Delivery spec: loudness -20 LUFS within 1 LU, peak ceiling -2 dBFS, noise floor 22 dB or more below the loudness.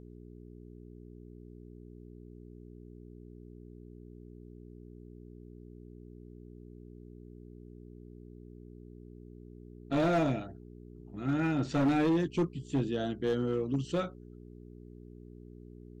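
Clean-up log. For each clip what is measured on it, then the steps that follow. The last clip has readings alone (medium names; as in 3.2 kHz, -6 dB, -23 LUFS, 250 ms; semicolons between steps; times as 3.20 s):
clipped samples 1.0%; clipping level -23.0 dBFS; hum 60 Hz; highest harmonic 420 Hz; hum level -48 dBFS; loudness -31.0 LUFS; peak level -23.0 dBFS; loudness target -20.0 LUFS
-> clip repair -23 dBFS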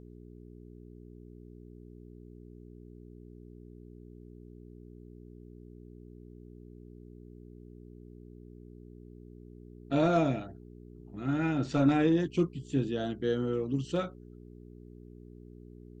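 clipped samples 0.0%; hum 60 Hz; highest harmonic 420 Hz; hum level -48 dBFS
-> de-hum 60 Hz, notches 7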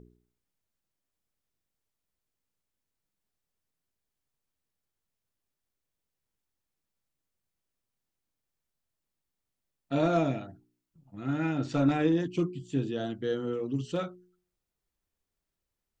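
hum not found; loudness -30.5 LUFS; peak level -14.5 dBFS; loudness target -20.0 LUFS
-> trim +10.5 dB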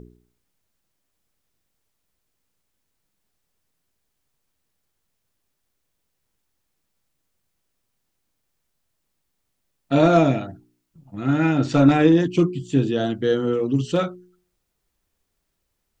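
loudness -20.0 LUFS; peak level -4.0 dBFS; noise floor -76 dBFS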